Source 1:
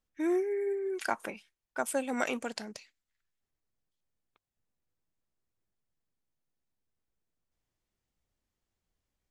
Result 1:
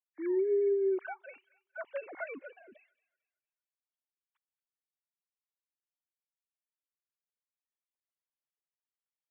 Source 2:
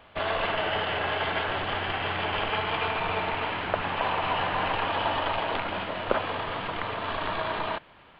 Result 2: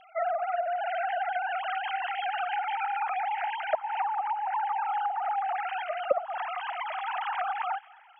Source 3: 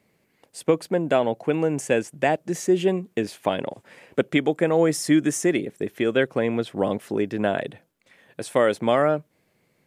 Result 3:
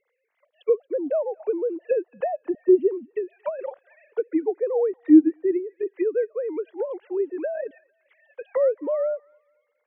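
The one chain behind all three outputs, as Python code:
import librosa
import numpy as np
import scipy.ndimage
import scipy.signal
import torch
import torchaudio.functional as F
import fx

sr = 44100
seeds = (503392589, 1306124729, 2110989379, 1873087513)

y = fx.sine_speech(x, sr)
y = fx.env_lowpass_down(y, sr, base_hz=670.0, full_db=-22.5)
y = fx.echo_wet_highpass(y, sr, ms=227, feedback_pct=33, hz=1400.0, wet_db=-19)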